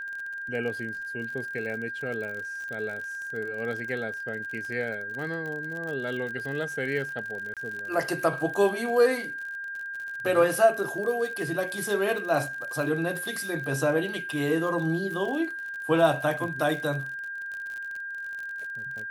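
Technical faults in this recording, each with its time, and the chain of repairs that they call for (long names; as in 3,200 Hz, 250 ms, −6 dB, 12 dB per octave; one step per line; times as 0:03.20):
surface crackle 49 per second −34 dBFS
whistle 1,600 Hz −33 dBFS
0:07.54–0:07.57: drop-out 27 ms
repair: click removal
notch filter 1,600 Hz, Q 30
repair the gap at 0:07.54, 27 ms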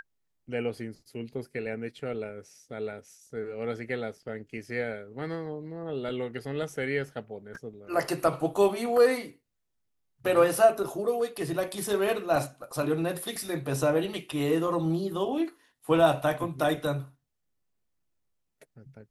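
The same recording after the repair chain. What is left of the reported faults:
none of them is left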